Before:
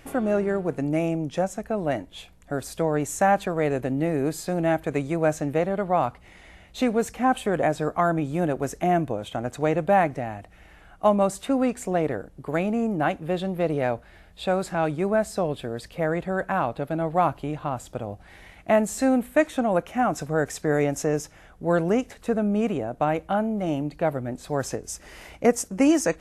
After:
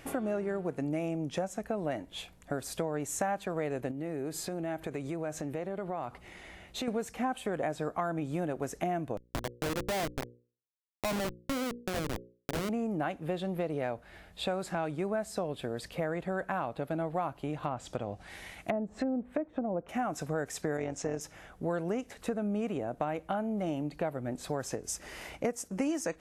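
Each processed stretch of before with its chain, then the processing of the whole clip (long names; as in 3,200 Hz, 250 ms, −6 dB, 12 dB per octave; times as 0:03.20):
0:03.91–0:06.88: parametric band 370 Hz +4.5 dB 0.28 octaves + downward compressor 3 to 1, threshold −34 dBFS
0:09.17–0:12.69: comparator with hysteresis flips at −23.5 dBFS + mains-hum notches 60/120/180/240/300/360/420/480/540 Hz
0:17.63–0:19.89: treble cut that deepens with the level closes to 560 Hz, closed at −19 dBFS + high-shelf EQ 4,000 Hz +9 dB
0:20.77–0:21.21: low-pass filter 7,900 Hz 24 dB per octave + amplitude modulation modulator 190 Hz, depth 45%
whole clip: low-shelf EQ 64 Hz −9 dB; downward compressor 4 to 1, threshold −31 dBFS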